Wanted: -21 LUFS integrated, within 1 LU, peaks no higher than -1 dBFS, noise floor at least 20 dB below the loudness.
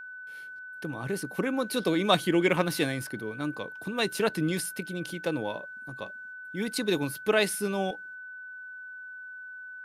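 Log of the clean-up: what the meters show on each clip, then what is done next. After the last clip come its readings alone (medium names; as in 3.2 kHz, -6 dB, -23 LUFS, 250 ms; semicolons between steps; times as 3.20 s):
steady tone 1.5 kHz; tone level -40 dBFS; loudness -29.5 LUFS; peak level -8.0 dBFS; loudness target -21.0 LUFS
-> band-stop 1.5 kHz, Q 30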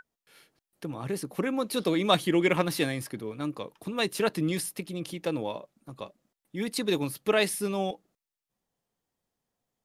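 steady tone not found; loudness -29.0 LUFS; peak level -8.0 dBFS; loudness target -21.0 LUFS
-> trim +8 dB; peak limiter -1 dBFS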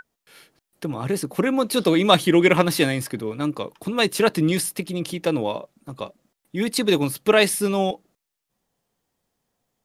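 loudness -21.5 LUFS; peak level -1.0 dBFS; noise floor -82 dBFS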